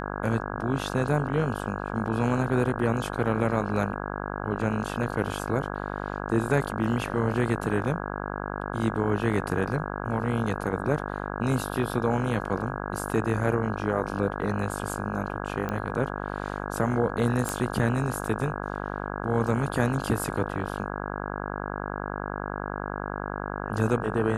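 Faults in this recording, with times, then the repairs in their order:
mains buzz 50 Hz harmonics 33 −33 dBFS
0:15.69: click −18 dBFS
0:17.49: click −13 dBFS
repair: click removal
hum removal 50 Hz, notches 33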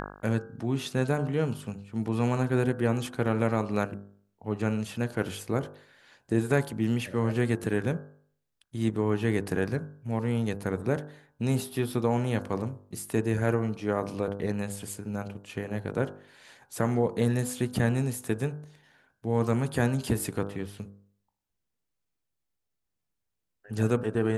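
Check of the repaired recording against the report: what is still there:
none of them is left

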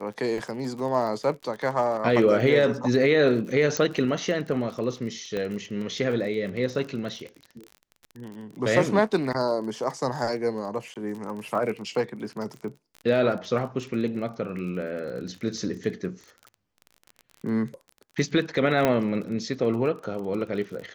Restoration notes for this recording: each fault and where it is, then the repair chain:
surface crackle 30 per second −34 dBFS
0:03.77: click −12 dBFS
0:05.37: click −18 dBFS
0:10.94–0:10.96: drop-out 17 ms
0:18.85: click −8 dBFS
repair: click removal
repair the gap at 0:10.94, 17 ms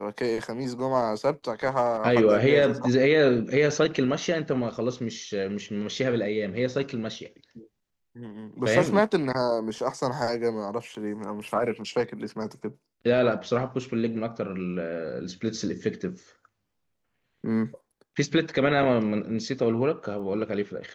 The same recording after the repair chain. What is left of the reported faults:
none of them is left

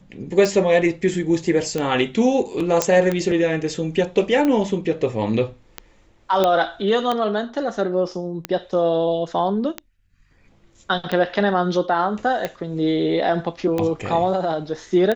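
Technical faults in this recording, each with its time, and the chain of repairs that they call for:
scratch tick 45 rpm −10 dBFS
0:02.82: click −2 dBFS
0:06.44: click −6 dBFS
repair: click removal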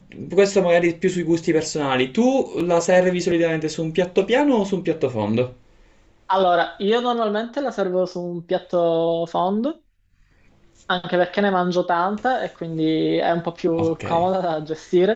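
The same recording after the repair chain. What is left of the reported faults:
none of them is left

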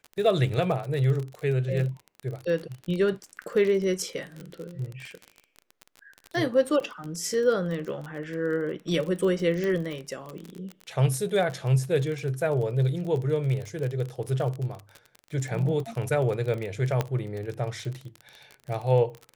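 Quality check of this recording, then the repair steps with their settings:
surface crackle 29 per second −31 dBFS
0:09.64: click
0:17.01: click −12 dBFS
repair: click removal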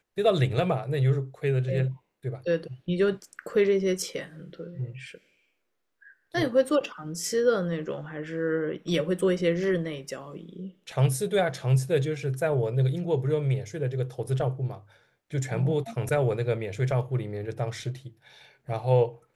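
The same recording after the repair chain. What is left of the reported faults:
0:09.64: click
0:17.01: click

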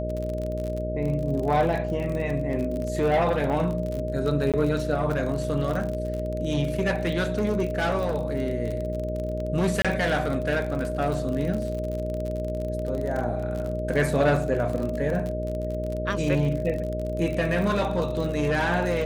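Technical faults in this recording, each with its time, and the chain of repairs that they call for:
mains buzz 60 Hz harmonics 10 −31 dBFS
surface crackle 42 per second −29 dBFS
whistle 620 Hz −30 dBFS
0:04.52–0:04.54: drop-out 17 ms
0:09.82–0:09.85: drop-out 26 ms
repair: click removal
hum removal 60 Hz, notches 10
notch filter 620 Hz, Q 30
repair the gap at 0:04.52, 17 ms
repair the gap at 0:09.82, 26 ms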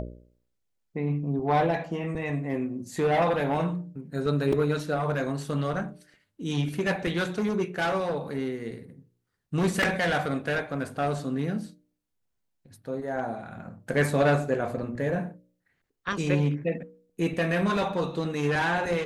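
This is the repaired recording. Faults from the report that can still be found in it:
none of them is left

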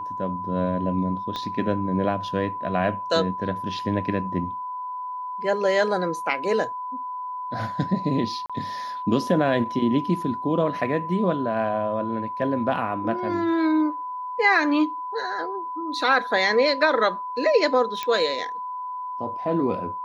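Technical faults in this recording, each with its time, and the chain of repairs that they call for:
whistle 1,000 Hz −29 dBFS
0:01.36: click −17 dBFS
0:08.46–0:08.50: drop-out 36 ms
0:18.03: click −13 dBFS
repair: click removal
notch filter 1,000 Hz, Q 30
repair the gap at 0:08.46, 36 ms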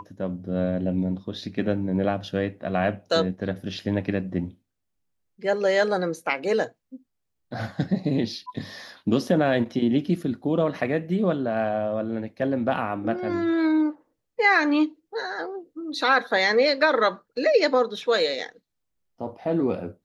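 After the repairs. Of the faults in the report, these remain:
0:01.36: click

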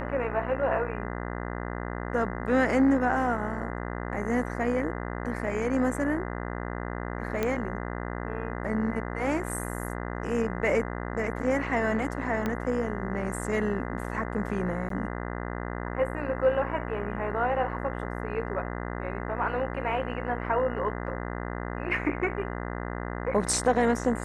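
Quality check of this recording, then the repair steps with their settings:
mains buzz 60 Hz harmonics 34 −34 dBFS
0:07.43: click −14 dBFS
0:12.46: click −16 dBFS
0:14.89–0:14.90: drop-out 13 ms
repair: click removal
hum removal 60 Hz, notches 34
repair the gap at 0:14.89, 13 ms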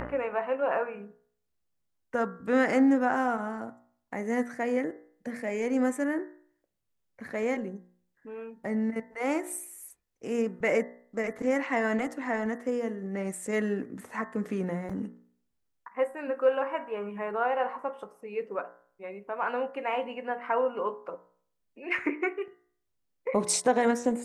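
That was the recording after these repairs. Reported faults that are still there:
0:12.46: click

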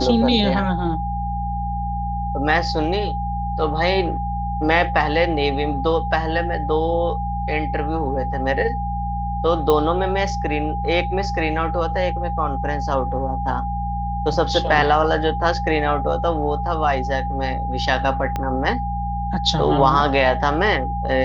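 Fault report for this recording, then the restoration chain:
mains hum 60 Hz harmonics 3 −26 dBFS
whistle 810 Hz −25 dBFS
0:09.70: click −7 dBFS
0:18.36: click −11 dBFS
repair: click removal
hum removal 60 Hz, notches 3
notch filter 810 Hz, Q 30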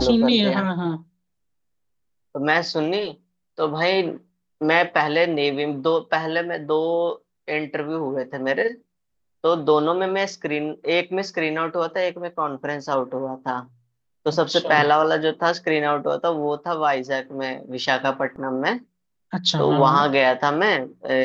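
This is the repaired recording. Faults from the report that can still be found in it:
0:18.36: click

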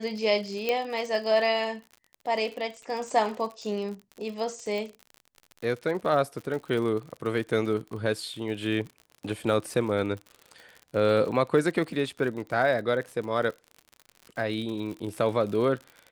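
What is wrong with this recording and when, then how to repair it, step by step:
surface crackle 57 per second −35 dBFS
0:00.69: click −13 dBFS
0:04.78: click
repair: click removal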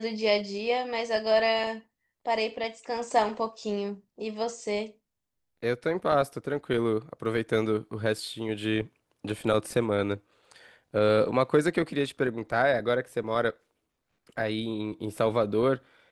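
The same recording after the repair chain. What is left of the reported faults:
none of them is left

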